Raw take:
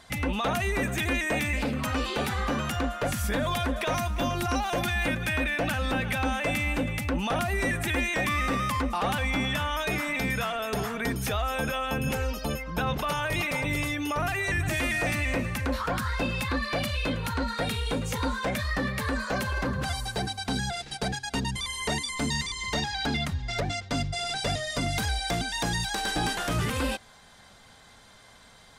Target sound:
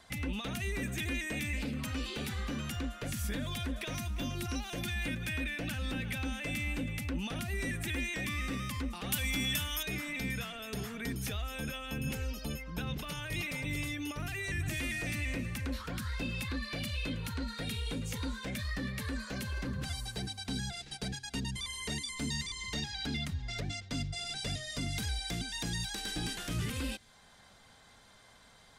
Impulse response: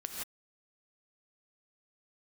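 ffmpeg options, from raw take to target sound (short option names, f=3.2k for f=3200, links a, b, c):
-filter_complex "[0:a]asettb=1/sr,asplit=3[a][b][c];[a]atrim=end=9.124[d];[b]atrim=start=9.12:end=9.83,asetpts=PTS-STARTPTS,afade=t=in:d=0.004:c=qsin,afade=t=out:st=0.706:d=0.004:c=qsin,aemphasis=mode=production:type=75kf[e];[c]atrim=start=9.826[f];[d][e]acrossfade=d=0.004:c1=hsin:c2=qsin[g];[g][f]acrossfade=d=0.004:c1=qsin:c2=hsin,acrossover=split=400|1800|5200[h][i][j][k];[i]acompressor=threshold=-47dB:ratio=6[l];[h][l][j][k]amix=inputs=4:normalize=0,volume=-6dB"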